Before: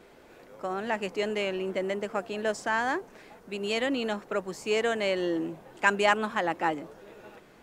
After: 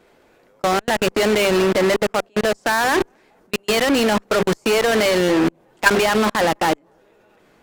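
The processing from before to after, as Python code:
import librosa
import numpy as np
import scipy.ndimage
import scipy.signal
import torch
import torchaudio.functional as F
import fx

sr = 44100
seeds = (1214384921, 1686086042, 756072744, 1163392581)

p1 = fx.hum_notches(x, sr, base_hz=50, count=8)
p2 = p1 * (1.0 - 0.56 / 2.0 + 0.56 / 2.0 * np.cos(2.0 * np.pi * 0.67 * (np.arange(len(p1)) / sr)))
p3 = p2 + fx.echo_filtered(p2, sr, ms=240, feedback_pct=58, hz=880.0, wet_db=-23.5, dry=0)
p4 = fx.level_steps(p3, sr, step_db=20)
p5 = fx.fuzz(p4, sr, gain_db=47.0, gate_db=-44.0)
p6 = p4 + F.gain(torch.from_numpy(p5), -5.0).numpy()
y = F.gain(torch.from_numpy(p6), 5.0).numpy()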